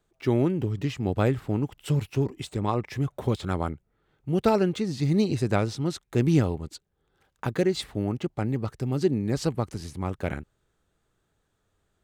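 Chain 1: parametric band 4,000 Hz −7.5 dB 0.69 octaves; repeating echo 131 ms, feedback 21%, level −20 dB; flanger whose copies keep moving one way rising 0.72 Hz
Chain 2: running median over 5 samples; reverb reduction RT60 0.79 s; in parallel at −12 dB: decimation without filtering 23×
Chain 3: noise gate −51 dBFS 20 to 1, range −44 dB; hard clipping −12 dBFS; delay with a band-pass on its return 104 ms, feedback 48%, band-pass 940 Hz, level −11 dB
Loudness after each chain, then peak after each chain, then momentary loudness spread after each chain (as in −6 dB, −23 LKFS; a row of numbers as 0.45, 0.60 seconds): −32.0, −26.5, −27.0 LKFS; −13.5, −7.0, −11.0 dBFS; 9, 10, 10 LU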